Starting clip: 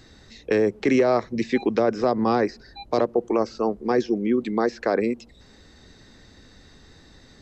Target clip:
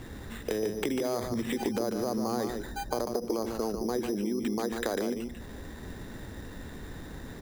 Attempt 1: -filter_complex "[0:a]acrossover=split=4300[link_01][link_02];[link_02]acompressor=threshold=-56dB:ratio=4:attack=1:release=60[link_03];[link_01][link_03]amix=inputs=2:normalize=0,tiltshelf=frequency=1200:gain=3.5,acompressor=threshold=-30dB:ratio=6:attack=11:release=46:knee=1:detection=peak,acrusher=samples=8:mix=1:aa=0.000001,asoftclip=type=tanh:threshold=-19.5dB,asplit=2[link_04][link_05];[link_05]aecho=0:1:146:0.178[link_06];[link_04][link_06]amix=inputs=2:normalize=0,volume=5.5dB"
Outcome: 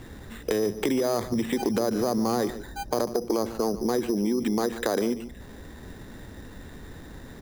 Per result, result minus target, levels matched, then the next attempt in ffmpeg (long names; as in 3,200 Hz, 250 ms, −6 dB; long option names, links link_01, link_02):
downward compressor: peak gain reduction −6.5 dB; echo-to-direct −8.5 dB
-filter_complex "[0:a]acrossover=split=4300[link_01][link_02];[link_02]acompressor=threshold=-56dB:ratio=4:attack=1:release=60[link_03];[link_01][link_03]amix=inputs=2:normalize=0,tiltshelf=frequency=1200:gain=3.5,acompressor=threshold=-38dB:ratio=6:attack=11:release=46:knee=1:detection=peak,acrusher=samples=8:mix=1:aa=0.000001,asoftclip=type=tanh:threshold=-19.5dB,asplit=2[link_04][link_05];[link_05]aecho=0:1:146:0.178[link_06];[link_04][link_06]amix=inputs=2:normalize=0,volume=5.5dB"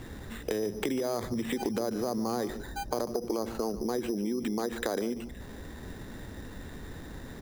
echo-to-direct −8.5 dB
-filter_complex "[0:a]acrossover=split=4300[link_01][link_02];[link_02]acompressor=threshold=-56dB:ratio=4:attack=1:release=60[link_03];[link_01][link_03]amix=inputs=2:normalize=0,tiltshelf=frequency=1200:gain=3.5,acompressor=threshold=-38dB:ratio=6:attack=11:release=46:knee=1:detection=peak,acrusher=samples=8:mix=1:aa=0.000001,asoftclip=type=tanh:threshold=-19.5dB,asplit=2[link_04][link_05];[link_05]aecho=0:1:146:0.473[link_06];[link_04][link_06]amix=inputs=2:normalize=0,volume=5.5dB"